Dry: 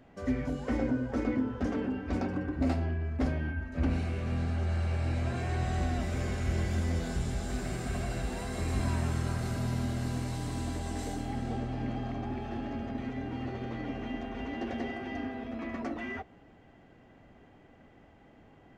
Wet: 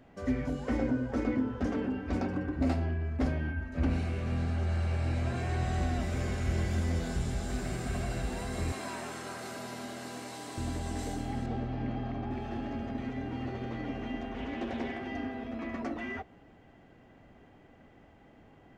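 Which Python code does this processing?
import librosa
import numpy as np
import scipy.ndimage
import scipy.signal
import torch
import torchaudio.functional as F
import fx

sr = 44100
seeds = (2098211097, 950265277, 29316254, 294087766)

y = fx.highpass(x, sr, hz=370.0, slope=12, at=(8.72, 10.58))
y = fx.air_absorb(y, sr, metres=120.0, at=(11.46, 12.31))
y = fx.doppler_dist(y, sr, depth_ms=0.23, at=(14.33, 15.04))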